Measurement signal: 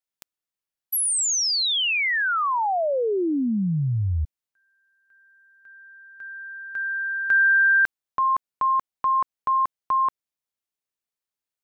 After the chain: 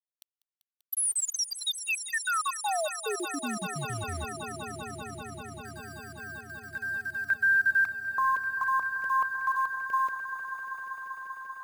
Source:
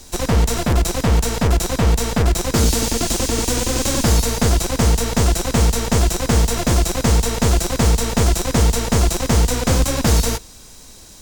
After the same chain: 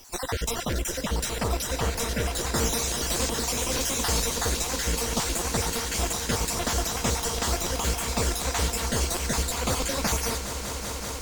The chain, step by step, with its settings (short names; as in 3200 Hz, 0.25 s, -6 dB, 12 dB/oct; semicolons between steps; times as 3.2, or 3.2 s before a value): random spectral dropouts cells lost 39%; low shelf 380 Hz -10 dB; requantised 8-bit, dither none; swelling echo 0.195 s, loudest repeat 5, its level -13.5 dB; gain -4 dB